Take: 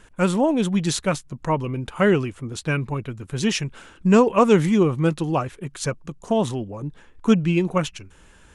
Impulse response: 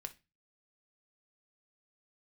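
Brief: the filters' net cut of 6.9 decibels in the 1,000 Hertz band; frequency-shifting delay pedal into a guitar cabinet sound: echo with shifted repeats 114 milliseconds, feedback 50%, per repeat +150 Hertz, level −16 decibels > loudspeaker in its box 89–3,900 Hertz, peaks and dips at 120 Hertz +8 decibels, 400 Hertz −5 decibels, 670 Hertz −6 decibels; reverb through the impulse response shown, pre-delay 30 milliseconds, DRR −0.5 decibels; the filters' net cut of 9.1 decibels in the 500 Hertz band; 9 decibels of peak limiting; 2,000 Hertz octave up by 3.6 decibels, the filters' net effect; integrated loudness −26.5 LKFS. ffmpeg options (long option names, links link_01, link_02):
-filter_complex "[0:a]equalizer=frequency=500:width_type=o:gain=-5.5,equalizer=frequency=1000:width_type=o:gain=-8.5,equalizer=frequency=2000:width_type=o:gain=8,alimiter=limit=-15dB:level=0:latency=1,asplit=2[link_01][link_02];[1:a]atrim=start_sample=2205,adelay=30[link_03];[link_02][link_03]afir=irnorm=-1:irlink=0,volume=4dB[link_04];[link_01][link_04]amix=inputs=2:normalize=0,asplit=5[link_05][link_06][link_07][link_08][link_09];[link_06]adelay=114,afreqshift=150,volume=-16dB[link_10];[link_07]adelay=228,afreqshift=300,volume=-22dB[link_11];[link_08]adelay=342,afreqshift=450,volume=-28dB[link_12];[link_09]adelay=456,afreqshift=600,volume=-34.1dB[link_13];[link_05][link_10][link_11][link_12][link_13]amix=inputs=5:normalize=0,highpass=89,equalizer=frequency=120:width_type=q:width=4:gain=8,equalizer=frequency=400:width_type=q:width=4:gain=-5,equalizer=frequency=670:width_type=q:width=4:gain=-6,lowpass=frequency=3900:width=0.5412,lowpass=frequency=3900:width=1.3066,volume=-3.5dB"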